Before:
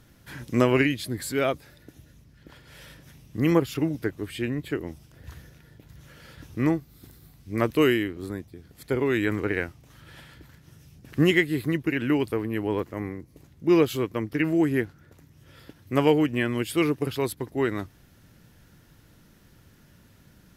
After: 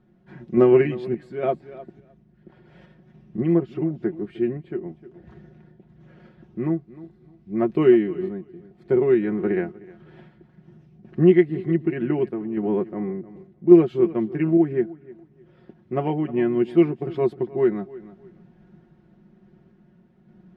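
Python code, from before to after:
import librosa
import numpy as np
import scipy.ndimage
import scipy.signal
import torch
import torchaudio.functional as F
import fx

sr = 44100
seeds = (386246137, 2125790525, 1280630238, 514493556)

p1 = x + 0.65 * np.pad(x, (int(5.5 * sr / 1000.0), 0))[:len(x)]
p2 = fx.small_body(p1, sr, hz=(210.0, 360.0, 660.0), ring_ms=30, db=15)
p3 = p2 + fx.echo_feedback(p2, sr, ms=307, feedback_pct=21, wet_db=-18, dry=0)
p4 = fx.tremolo_random(p3, sr, seeds[0], hz=3.5, depth_pct=55)
p5 = scipy.signal.sosfilt(scipy.signal.butter(2, 2500.0, 'lowpass', fs=sr, output='sos'), p4)
y = p5 * librosa.db_to_amplitude(-8.0)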